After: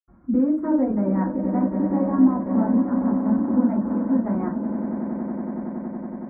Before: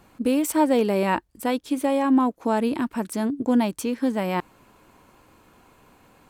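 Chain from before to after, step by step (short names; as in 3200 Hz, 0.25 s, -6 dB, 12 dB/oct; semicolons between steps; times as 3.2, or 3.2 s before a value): notch 450 Hz, Q 12; swelling echo 93 ms, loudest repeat 8, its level -11.5 dB; transient shaper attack +1 dB, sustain -11 dB; in parallel at +1 dB: limiter -17 dBFS, peak gain reduction 9.5 dB; on the sum: reverb removal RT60 0.78 s; reverb RT60 0.35 s, pre-delay 77 ms; gain +6 dB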